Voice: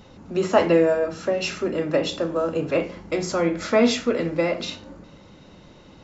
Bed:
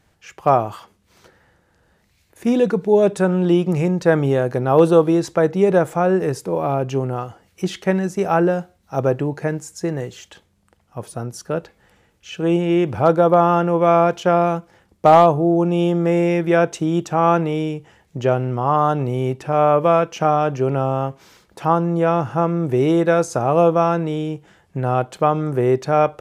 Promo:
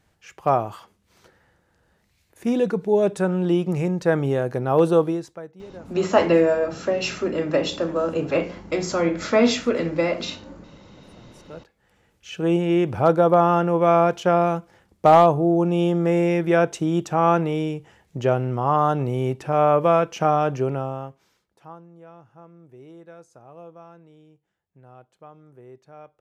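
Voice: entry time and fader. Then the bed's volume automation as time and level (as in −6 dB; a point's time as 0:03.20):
5.60 s, +0.5 dB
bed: 0:05.04 −4.5 dB
0:05.54 −26 dB
0:11.15 −26 dB
0:12.12 −2.5 dB
0:20.57 −2.5 dB
0:21.90 −28.5 dB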